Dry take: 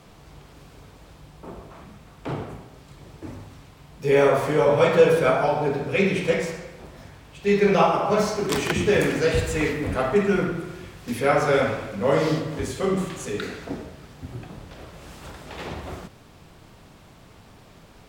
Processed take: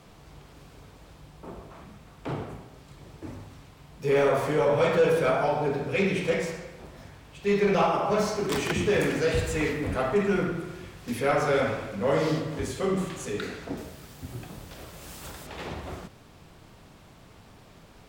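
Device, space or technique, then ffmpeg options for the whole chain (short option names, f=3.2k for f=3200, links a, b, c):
saturation between pre-emphasis and de-emphasis: -filter_complex "[0:a]highshelf=f=2.1k:g=8,asoftclip=type=tanh:threshold=-12dB,highshelf=f=2.1k:g=-8,asettb=1/sr,asplit=3[a][b][c];[a]atrim=end=13.774[d];[b]atrim=start=13.77:end=15.47,asetpts=PTS-STARTPTS,afade=t=in:d=0.004:c=qsin,afade=t=out:st=1.696:d=0.004:c=qsin,aemphasis=mode=production:type=50kf[e];[c]atrim=start=15.466[f];[d][e]acrossfade=d=0.004:c1=hsin:c2=qsin[g];[g][f]acrossfade=d=0.004:c1=qsin:c2=hsin,volume=-2.5dB"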